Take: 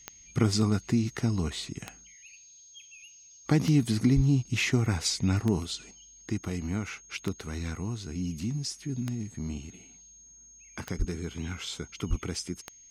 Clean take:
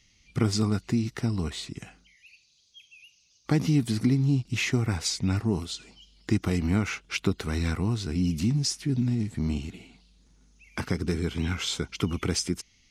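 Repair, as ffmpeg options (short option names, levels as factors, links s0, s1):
-filter_complex "[0:a]adeclick=t=4,bandreject=f=6500:w=30,asplit=3[s0][s1][s2];[s0]afade=t=out:st=4.15:d=0.02[s3];[s1]highpass=f=140:w=0.5412,highpass=f=140:w=1.3066,afade=t=in:st=4.15:d=0.02,afade=t=out:st=4.27:d=0.02[s4];[s2]afade=t=in:st=4.27:d=0.02[s5];[s3][s4][s5]amix=inputs=3:normalize=0,asplit=3[s6][s7][s8];[s6]afade=t=out:st=10.98:d=0.02[s9];[s7]highpass=f=140:w=0.5412,highpass=f=140:w=1.3066,afade=t=in:st=10.98:d=0.02,afade=t=out:st=11.1:d=0.02[s10];[s8]afade=t=in:st=11.1:d=0.02[s11];[s9][s10][s11]amix=inputs=3:normalize=0,asplit=3[s12][s13][s14];[s12]afade=t=out:st=12.09:d=0.02[s15];[s13]highpass=f=140:w=0.5412,highpass=f=140:w=1.3066,afade=t=in:st=12.09:d=0.02,afade=t=out:st=12.21:d=0.02[s16];[s14]afade=t=in:st=12.21:d=0.02[s17];[s15][s16][s17]amix=inputs=3:normalize=0,asetnsamples=n=441:p=0,asendcmd='5.91 volume volume 7dB',volume=1"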